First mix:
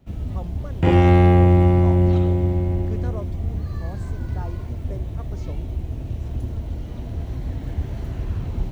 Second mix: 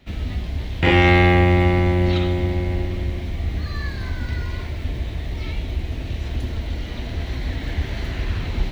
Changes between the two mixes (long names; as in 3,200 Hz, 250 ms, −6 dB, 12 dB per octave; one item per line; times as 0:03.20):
speech: muted
first sound +3.5 dB
master: add octave-band graphic EQ 125/2,000/4,000 Hz −6/+11/+11 dB